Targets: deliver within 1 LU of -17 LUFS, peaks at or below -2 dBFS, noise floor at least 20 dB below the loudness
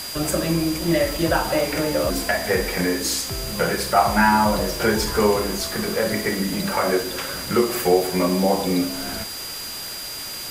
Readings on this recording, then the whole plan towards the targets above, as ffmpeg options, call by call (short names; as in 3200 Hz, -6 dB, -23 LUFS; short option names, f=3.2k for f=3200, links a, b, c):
steady tone 4800 Hz; tone level -33 dBFS; noise floor -32 dBFS; noise floor target -42 dBFS; loudness -21.5 LUFS; peak -4.0 dBFS; loudness target -17.0 LUFS
-> -af "bandreject=f=4.8k:w=30"
-af "afftdn=nr=10:nf=-32"
-af "volume=4.5dB,alimiter=limit=-2dB:level=0:latency=1"